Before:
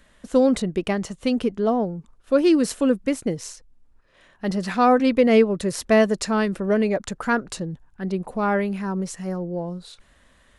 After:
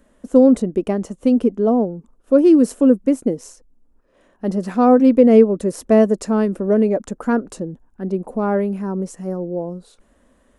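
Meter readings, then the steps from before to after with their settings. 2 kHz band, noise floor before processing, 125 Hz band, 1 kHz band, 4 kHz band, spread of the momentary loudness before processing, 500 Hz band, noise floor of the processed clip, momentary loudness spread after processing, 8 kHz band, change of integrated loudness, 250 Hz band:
-6.5 dB, -58 dBFS, +2.5 dB, 0.0 dB, n/a, 14 LU, +5.0 dB, -59 dBFS, 15 LU, -3.0 dB, +5.0 dB, +6.0 dB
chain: graphic EQ 125/250/500/2000/4000 Hz -7/+9/+5/-6/-9 dB; gain -1 dB

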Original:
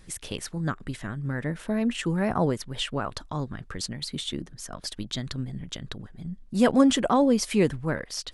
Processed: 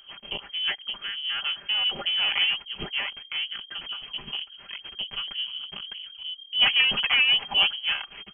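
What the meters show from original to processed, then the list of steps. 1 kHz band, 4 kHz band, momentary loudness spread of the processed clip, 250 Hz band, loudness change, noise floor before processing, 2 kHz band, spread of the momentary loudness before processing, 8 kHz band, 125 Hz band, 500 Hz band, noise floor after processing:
-6.5 dB, +13.5 dB, 16 LU, -24.5 dB, +3.0 dB, -50 dBFS, +10.5 dB, 15 LU, under -40 dB, -20.5 dB, -18.0 dB, -49 dBFS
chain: minimum comb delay 5 ms; inverted band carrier 3200 Hz; dynamic EQ 810 Hz, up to +6 dB, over -51 dBFS, Q 3.1

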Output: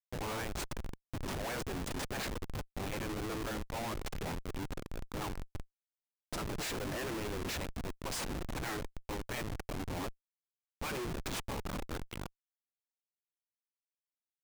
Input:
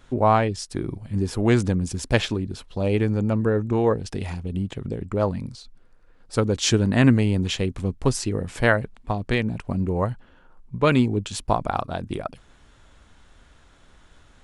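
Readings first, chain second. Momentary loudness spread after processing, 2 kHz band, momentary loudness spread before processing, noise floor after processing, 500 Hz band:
6 LU, -13.0 dB, 11 LU, under -85 dBFS, -17.5 dB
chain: spectral gate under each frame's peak -10 dB weak; Schmitt trigger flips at -36 dBFS; gain -3 dB

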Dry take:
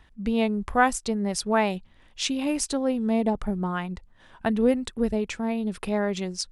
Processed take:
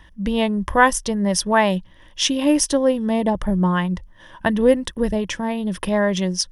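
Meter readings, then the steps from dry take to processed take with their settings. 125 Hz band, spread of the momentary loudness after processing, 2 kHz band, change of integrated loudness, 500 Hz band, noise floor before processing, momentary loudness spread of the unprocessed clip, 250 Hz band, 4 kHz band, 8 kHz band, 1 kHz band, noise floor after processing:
+8.5 dB, 8 LU, +7.5 dB, +6.0 dB, +6.5 dB, -55 dBFS, 7 LU, +5.5 dB, +8.5 dB, +8.0 dB, +6.0 dB, -48 dBFS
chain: ripple EQ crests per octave 1.2, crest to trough 9 dB; gain +6.5 dB

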